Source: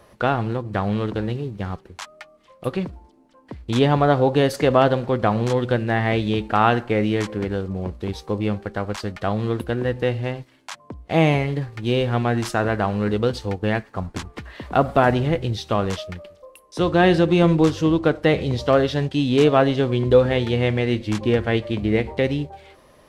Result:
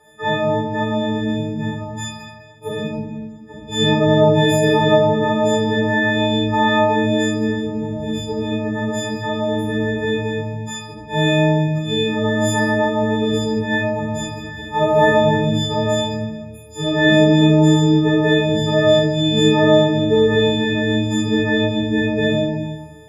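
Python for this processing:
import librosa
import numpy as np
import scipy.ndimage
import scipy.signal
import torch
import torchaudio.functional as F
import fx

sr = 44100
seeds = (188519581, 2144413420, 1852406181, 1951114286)

y = fx.freq_snap(x, sr, grid_st=6)
y = fx.high_shelf(y, sr, hz=2600.0, db=-8.5)
y = fx.notch_comb(y, sr, f0_hz=1300.0)
y = fx.cheby_harmonics(y, sr, harmonics=(2, 4), levels_db=(-31, -39), full_scale_db=-3.0)
y = fx.room_shoebox(y, sr, seeds[0], volume_m3=920.0, walls='mixed', distance_m=4.2)
y = y * librosa.db_to_amplitude(-6.5)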